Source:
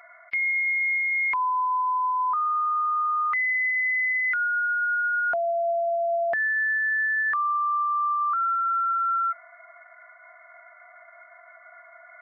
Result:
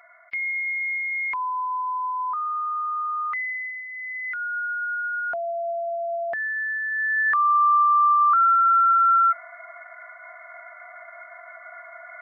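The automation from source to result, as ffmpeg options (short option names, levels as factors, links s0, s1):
-af "volume=7.5,afade=t=out:st=3.3:d=0.57:silence=0.298538,afade=t=in:st=3.87:d=0.7:silence=0.316228,afade=t=in:st=6.9:d=0.73:silence=0.316228"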